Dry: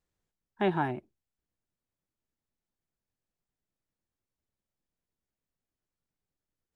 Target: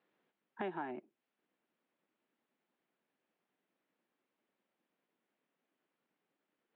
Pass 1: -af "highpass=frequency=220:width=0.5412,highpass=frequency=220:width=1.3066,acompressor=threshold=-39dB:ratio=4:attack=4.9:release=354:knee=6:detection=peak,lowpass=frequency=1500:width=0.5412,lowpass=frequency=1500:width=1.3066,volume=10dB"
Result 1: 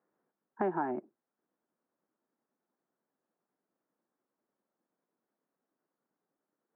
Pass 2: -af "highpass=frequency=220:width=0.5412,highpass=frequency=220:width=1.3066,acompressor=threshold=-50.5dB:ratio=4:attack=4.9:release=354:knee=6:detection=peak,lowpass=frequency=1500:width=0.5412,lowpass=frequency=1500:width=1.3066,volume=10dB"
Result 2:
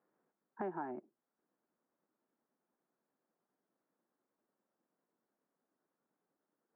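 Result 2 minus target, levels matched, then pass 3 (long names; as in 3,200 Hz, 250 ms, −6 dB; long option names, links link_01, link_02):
2,000 Hz band −5.0 dB
-af "highpass=frequency=220:width=0.5412,highpass=frequency=220:width=1.3066,acompressor=threshold=-50.5dB:ratio=4:attack=4.9:release=354:knee=6:detection=peak,lowpass=frequency=3100:width=0.5412,lowpass=frequency=3100:width=1.3066,volume=10dB"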